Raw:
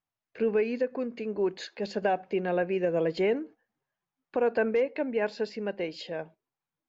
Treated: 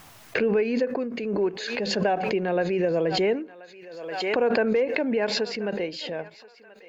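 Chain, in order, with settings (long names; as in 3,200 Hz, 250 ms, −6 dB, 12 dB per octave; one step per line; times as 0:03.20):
feedback echo with a high-pass in the loop 1,031 ms, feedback 48%, high-pass 920 Hz, level −16.5 dB
background raised ahead of every attack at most 40 dB per second
level +2.5 dB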